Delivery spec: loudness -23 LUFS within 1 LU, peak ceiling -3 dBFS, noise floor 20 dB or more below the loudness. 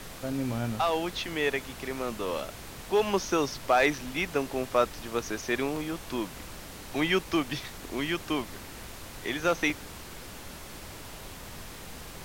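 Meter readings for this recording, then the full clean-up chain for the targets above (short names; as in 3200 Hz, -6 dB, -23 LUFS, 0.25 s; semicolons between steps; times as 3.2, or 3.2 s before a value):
dropouts 2; longest dropout 2.8 ms; noise floor -44 dBFS; noise floor target -50 dBFS; loudness -30.0 LUFS; peak -11.5 dBFS; loudness target -23.0 LUFS
-> interpolate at 5.76/9.7, 2.8 ms; noise print and reduce 6 dB; gain +7 dB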